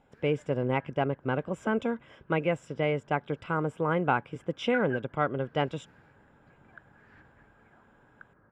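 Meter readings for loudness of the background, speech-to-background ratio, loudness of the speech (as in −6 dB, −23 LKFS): −44.5 LKFS, 14.5 dB, −30.0 LKFS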